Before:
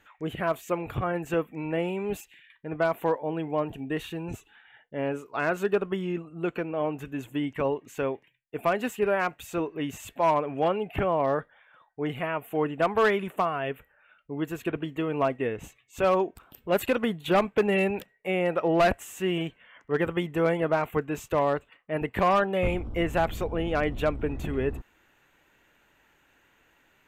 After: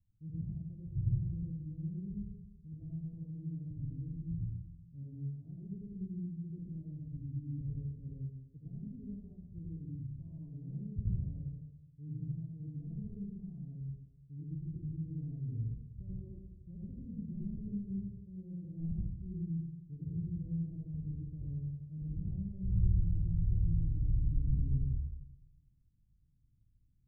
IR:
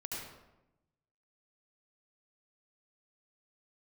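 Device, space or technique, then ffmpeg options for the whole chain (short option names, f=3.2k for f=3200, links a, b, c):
club heard from the street: -filter_complex "[0:a]alimiter=limit=-19.5dB:level=0:latency=1,lowpass=f=140:w=0.5412,lowpass=f=140:w=1.3066[a];[1:a]atrim=start_sample=2205[b];[a][b]afir=irnorm=-1:irlink=0,volume=3.5dB"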